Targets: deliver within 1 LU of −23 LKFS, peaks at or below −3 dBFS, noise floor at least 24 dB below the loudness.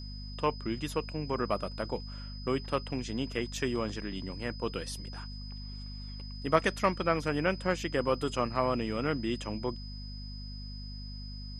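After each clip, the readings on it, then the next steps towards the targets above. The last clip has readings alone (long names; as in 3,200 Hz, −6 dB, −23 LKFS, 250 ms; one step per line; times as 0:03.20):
mains hum 50 Hz; hum harmonics up to 250 Hz; level of the hum −39 dBFS; interfering tone 5,000 Hz; level of the tone −47 dBFS; integrated loudness −33.5 LKFS; sample peak −8.5 dBFS; target loudness −23.0 LKFS
→ mains-hum notches 50/100/150/200/250 Hz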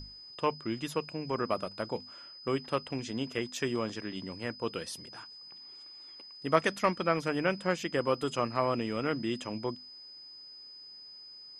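mains hum none found; interfering tone 5,000 Hz; level of the tone −47 dBFS
→ notch filter 5,000 Hz, Q 30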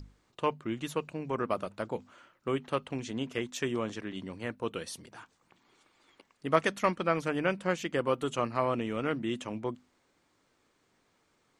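interfering tone none found; integrated loudness −33.0 LKFS; sample peak −8.5 dBFS; target loudness −23.0 LKFS
→ level +10 dB
brickwall limiter −3 dBFS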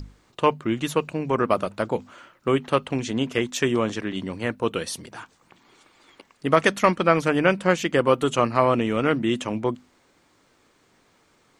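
integrated loudness −23.5 LKFS; sample peak −3.0 dBFS; background noise floor −62 dBFS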